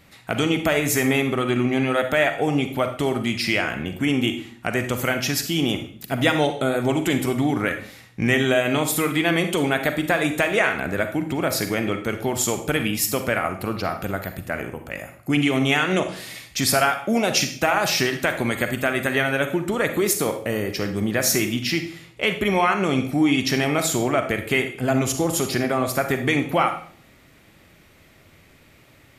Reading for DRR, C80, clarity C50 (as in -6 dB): 7.0 dB, 13.5 dB, 8.5 dB